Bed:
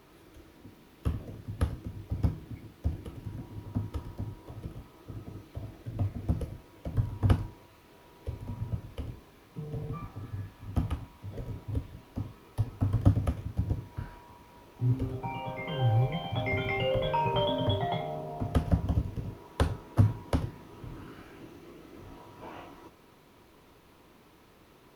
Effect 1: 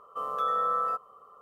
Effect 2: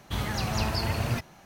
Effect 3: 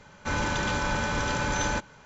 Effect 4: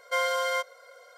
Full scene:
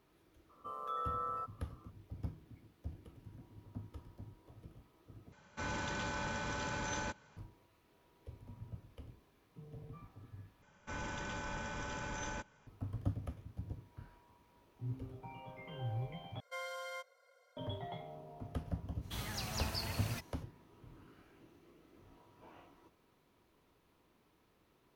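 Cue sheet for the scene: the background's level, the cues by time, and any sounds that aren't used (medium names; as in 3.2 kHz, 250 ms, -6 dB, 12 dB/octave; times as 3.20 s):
bed -14 dB
0.49 s: add 1 -11.5 dB
5.32 s: replace with 3 -11.5 dB + high-pass 49 Hz
10.62 s: replace with 3 -14.5 dB + band-stop 4.2 kHz, Q 5.5
16.40 s: replace with 4 -17 dB
19.00 s: add 2 -14 dB, fades 0.05 s + treble shelf 3 kHz +9.5 dB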